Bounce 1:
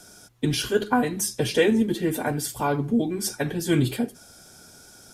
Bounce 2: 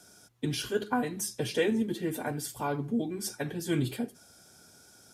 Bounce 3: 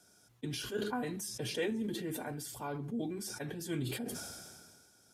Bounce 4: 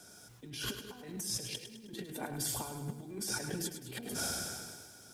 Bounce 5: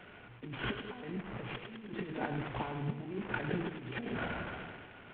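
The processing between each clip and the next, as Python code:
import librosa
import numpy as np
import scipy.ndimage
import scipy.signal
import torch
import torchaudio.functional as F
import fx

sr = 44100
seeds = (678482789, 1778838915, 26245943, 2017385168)

y1 = scipy.signal.sosfilt(scipy.signal.butter(2, 61.0, 'highpass', fs=sr, output='sos'), x)
y1 = y1 * 10.0 ** (-7.5 / 20.0)
y2 = fx.sustainer(y1, sr, db_per_s=31.0)
y2 = y2 * 10.0 ** (-8.5 / 20.0)
y3 = fx.over_compress(y2, sr, threshold_db=-44.0, ratio=-0.5)
y3 = fx.echo_crushed(y3, sr, ms=104, feedback_pct=55, bits=11, wet_db=-9)
y3 = y3 * 10.0 ** (3.5 / 20.0)
y4 = fx.cvsd(y3, sr, bps=16000)
y4 = y4 * 10.0 ** (4.5 / 20.0)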